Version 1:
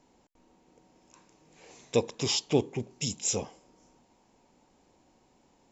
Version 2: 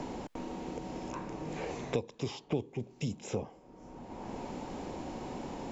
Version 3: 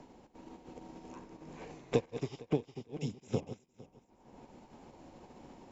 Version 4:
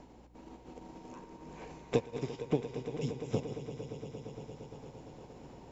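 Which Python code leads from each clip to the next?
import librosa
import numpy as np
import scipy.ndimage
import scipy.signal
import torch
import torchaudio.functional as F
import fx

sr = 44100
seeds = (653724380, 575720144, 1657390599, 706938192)

y1 = fx.lowpass(x, sr, hz=1100.0, slope=6)
y1 = fx.band_squash(y1, sr, depth_pct=100)
y1 = y1 * 10.0 ** (1.5 / 20.0)
y2 = fx.reverse_delay_fb(y1, sr, ms=229, feedback_pct=64, wet_db=-5)
y2 = fx.upward_expand(y2, sr, threshold_db=-48.0, expansion=2.5)
y2 = y2 * 10.0 ** (4.0 / 20.0)
y3 = fx.add_hum(y2, sr, base_hz=60, snr_db=20)
y3 = fx.echo_swell(y3, sr, ms=115, loudest=5, wet_db=-14.5)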